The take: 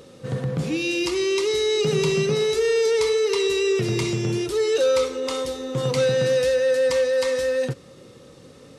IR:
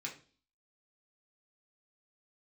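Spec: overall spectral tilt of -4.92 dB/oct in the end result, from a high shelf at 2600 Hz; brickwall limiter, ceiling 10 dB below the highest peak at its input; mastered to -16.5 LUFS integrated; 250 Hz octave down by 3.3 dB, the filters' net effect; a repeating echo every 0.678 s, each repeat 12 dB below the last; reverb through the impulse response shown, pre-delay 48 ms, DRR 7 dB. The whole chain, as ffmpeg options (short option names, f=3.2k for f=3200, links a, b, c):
-filter_complex "[0:a]equalizer=f=250:t=o:g=-6,highshelf=f=2.6k:g=-4,alimiter=limit=-22dB:level=0:latency=1,aecho=1:1:678|1356|2034:0.251|0.0628|0.0157,asplit=2[a][b];[1:a]atrim=start_sample=2205,adelay=48[c];[b][c]afir=irnorm=-1:irlink=0,volume=-7dB[d];[a][d]amix=inputs=2:normalize=0,volume=11.5dB"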